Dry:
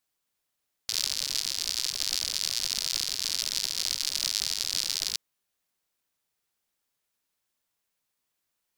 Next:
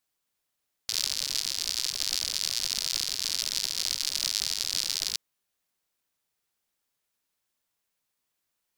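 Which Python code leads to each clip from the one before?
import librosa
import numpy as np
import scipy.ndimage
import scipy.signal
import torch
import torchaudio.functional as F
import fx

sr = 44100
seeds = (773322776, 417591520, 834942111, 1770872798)

y = x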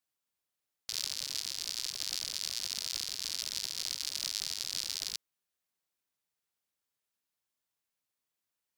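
y = scipy.signal.sosfilt(scipy.signal.butter(2, 43.0, 'highpass', fs=sr, output='sos'), x)
y = F.gain(torch.from_numpy(y), -7.0).numpy()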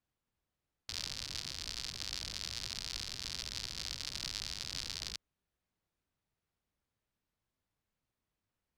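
y = fx.riaa(x, sr, side='playback')
y = F.gain(torch.from_numpy(y), 3.0).numpy()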